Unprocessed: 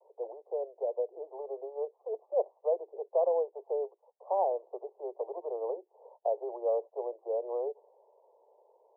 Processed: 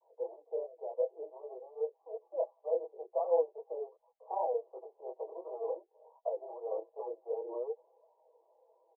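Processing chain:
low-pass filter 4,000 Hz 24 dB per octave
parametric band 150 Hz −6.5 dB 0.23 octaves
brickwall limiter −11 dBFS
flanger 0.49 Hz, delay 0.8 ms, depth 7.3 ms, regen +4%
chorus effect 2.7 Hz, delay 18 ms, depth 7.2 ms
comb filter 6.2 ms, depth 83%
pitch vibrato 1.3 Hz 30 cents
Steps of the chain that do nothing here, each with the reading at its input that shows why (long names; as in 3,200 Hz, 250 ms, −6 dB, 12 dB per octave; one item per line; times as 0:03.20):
low-pass filter 4,000 Hz: nothing at its input above 1,000 Hz
parametric band 150 Hz: nothing at its input below 320 Hz
brickwall limiter −11 dBFS: peak of its input −17.5 dBFS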